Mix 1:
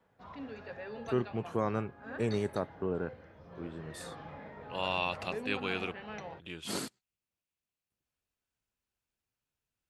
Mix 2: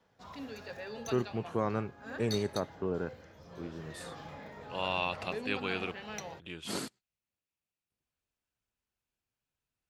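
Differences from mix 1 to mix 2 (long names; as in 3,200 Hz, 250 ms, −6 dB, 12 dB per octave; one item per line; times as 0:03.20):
background: remove low-pass filter 2,400 Hz 12 dB per octave
master: add high-shelf EQ 9,300 Hz −3.5 dB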